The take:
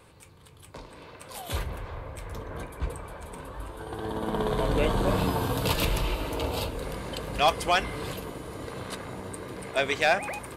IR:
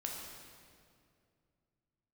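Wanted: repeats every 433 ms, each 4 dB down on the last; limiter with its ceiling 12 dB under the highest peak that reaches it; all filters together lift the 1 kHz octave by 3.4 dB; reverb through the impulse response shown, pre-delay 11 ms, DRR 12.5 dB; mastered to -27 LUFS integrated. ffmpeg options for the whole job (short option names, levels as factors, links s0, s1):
-filter_complex "[0:a]equalizer=f=1000:t=o:g=4.5,alimiter=limit=0.0891:level=0:latency=1,aecho=1:1:433|866|1299|1732|2165|2598|3031|3464|3897:0.631|0.398|0.25|0.158|0.0994|0.0626|0.0394|0.0249|0.0157,asplit=2[s0][s1];[1:a]atrim=start_sample=2205,adelay=11[s2];[s1][s2]afir=irnorm=-1:irlink=0,volume=0.224[s3];[s0][s3]amix=inputs=2:normalize=0,volume=1.58"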